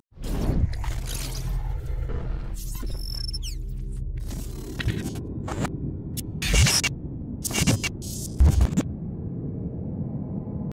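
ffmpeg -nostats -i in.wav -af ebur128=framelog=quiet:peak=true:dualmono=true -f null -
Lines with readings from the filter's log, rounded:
Integrated loudness:
  I:         -24.7 LUFS
  Threshold: -34.7 LUFS
Loudness range:
  LRA:         8.9 LU
  Threshold: -44.2 LUFS
  LRA low:   -29.7 LUFS
  LRA high:  -20.8 LUFS
True peak:
  Peak:       -9.6 dBFS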